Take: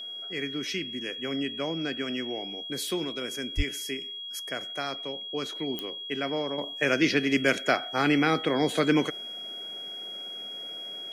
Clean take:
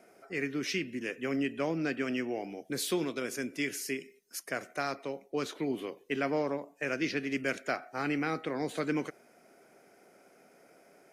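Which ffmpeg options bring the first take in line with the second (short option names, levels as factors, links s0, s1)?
-filter_complex "[0:a]adeclick=t=4,bandreject=f=3300:w=30,asplit=3[s0][s1][s2];[s0]afade=t=out:st=3.56:d=0.02[s3];[s1]highpass=f=140:w=0.5412,highpass=f=140:w=1.3066,afade=t=in:st=3.56:d=0.02,afade=t=out:st=3.68:d=0.02[s4];[s2]afade=t=in:st=3.68:d=0.02[s5];[s3][s4][s5]amix=inputs=3:normalize=0,asetnsamples=n=441:p=0,asendcmd='6.58 volume volume -8.5dB',volume=1"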